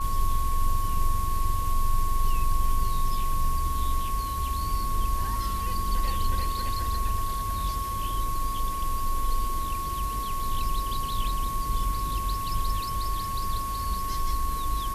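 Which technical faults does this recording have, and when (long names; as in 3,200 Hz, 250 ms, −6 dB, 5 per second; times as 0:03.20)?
whistle 1,100 Hz −30 dBFS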